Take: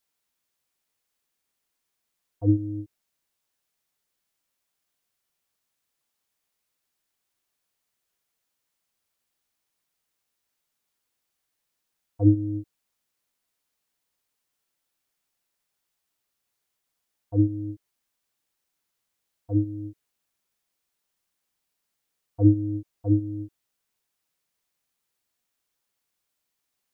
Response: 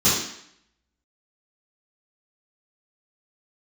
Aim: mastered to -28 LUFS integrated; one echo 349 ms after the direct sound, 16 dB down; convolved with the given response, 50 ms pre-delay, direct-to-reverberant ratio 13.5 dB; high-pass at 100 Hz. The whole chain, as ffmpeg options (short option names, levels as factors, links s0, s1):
-filter_complex "[0:a]highpass=100,aecho=1:1:349:0.158,asplit=2[s0][s1];[1:a]atrim=start_sample=2205,adelay=50[s2];[s1][s2]afir=irnorm=-1:irlink=0,volume=0.0282[s3];[s0][s3]amix=inputs=2:normalize=0,volume=0.891"